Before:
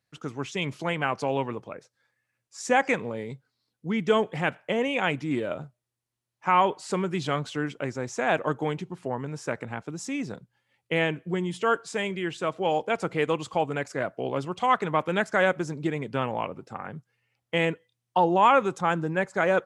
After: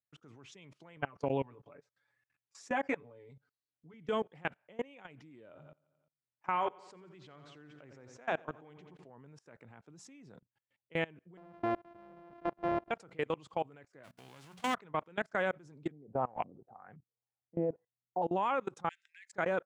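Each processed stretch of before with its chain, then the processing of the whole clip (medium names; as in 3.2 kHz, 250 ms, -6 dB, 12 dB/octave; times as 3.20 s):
0.96–3.94 s: treble shelf 2.3 kHz -7 dB + comb 7 ms, depth 90% + tape noise reduction on one side only encoder only
5.47–9.11 s: low-pass 7.5 kHz + band-stop 200 Hz, Q 6.3 + feedback delay 87 ms, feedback 53%, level -11.5 dB
11.37–12.91 s: sorted samples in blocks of 128 samples + low-pass 1.7 kHz + peaking EQ 650 Hz +6.5 dB 0.93 oct
14.03–14.73 s: formants flattened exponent 0.3 + hum notches 60/120/180/240 Hz
15.91–18.22 s: peaking EQ 730 Hz +11 dB 0.25 oct + LFO low-pass saw up 1.9 Hz 210–2600 Hz
18.89–19.33 s: FFT filter 1.1 kHz 0 dB, 1.6 kHz +6 dB, 2.9 kHz +9 dB + transient shaper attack -7 dB, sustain 0 dB + elliptic high-pass 1.9 kHz, stop band 60 dB
whole clip: treble shelf 6 kHz -10 dB; level held to a coarse grid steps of 24 dB; trim -7 dB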